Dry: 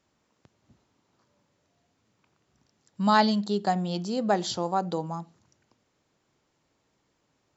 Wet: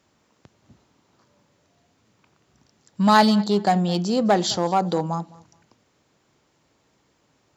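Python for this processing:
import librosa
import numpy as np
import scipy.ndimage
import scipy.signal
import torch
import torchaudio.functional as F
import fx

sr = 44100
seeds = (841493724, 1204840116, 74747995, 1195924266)

p1 = fx.echo_feedback(x, sr, ms=210, feedback_pct=22, wet_db=-23.0)
p2 = 10.0 ** (-23.5 / 20.0) * (np.abs((p1 / 10.0 ** (-23.5 / 20.0) + 3.0) % 4.0 - 2.0) - 1.0)
p3 = p1 + (p2 * librosa.db_to_amplitude(-9.0))
p4 = scipy.signal.sosfilt(scipy.signal.butter(2, 40.0, 'highpass', fs=sr, output='sos'), p3)
y = p4 * librosa.db_to_amplitude(5.0)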